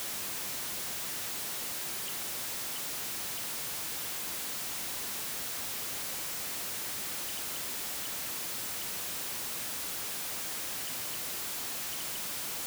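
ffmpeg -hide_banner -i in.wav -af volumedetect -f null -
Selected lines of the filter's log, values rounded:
mean_volume: -36.9 dB
max_volume: -34.7 dB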